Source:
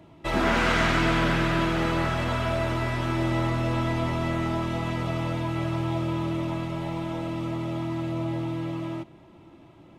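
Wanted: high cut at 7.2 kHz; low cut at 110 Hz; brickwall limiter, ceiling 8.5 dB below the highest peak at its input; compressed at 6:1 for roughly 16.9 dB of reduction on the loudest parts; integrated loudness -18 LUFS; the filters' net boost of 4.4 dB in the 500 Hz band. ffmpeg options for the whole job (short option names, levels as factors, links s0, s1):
-af "highpass=110,lowpass=7200,equalizer=f=500:t=o:g=6.5,acompressor=threshold=0.0141:ratio=6,volume=16.8,alimiter=limit=0.335:level=0:latency=1"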